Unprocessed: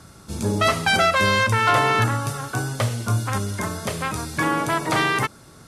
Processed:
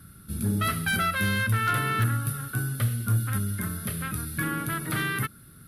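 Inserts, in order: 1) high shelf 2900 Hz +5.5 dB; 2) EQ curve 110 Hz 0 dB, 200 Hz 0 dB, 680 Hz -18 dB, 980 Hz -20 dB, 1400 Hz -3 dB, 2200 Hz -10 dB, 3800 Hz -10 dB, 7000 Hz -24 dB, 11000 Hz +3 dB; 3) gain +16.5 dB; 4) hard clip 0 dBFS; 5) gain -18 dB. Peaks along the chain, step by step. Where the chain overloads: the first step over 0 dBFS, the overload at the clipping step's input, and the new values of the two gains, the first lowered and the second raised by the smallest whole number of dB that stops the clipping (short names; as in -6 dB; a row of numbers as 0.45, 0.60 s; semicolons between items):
-4.0, -9.0, +7.5, 0.0, -18.0 dBFS; step 3, 7.5 dB; step 3 +8.5 dB, step 5 -10 dB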